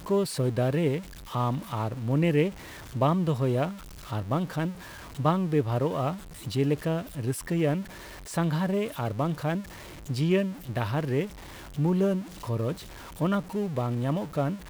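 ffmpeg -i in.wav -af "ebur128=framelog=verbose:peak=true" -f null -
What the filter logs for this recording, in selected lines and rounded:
Integrated loudness:
  I:         -28.5 LUFS
  Threshold: -38.8 LUFS
Loudness range:
  LRA:         2.0 LU
  Threshold: -48.8 LUFS
  LRA low:   -29.6 LUFS
  LRA high:  -27.7 LUFS
True peak:
  Peak:      -11.7 dBFS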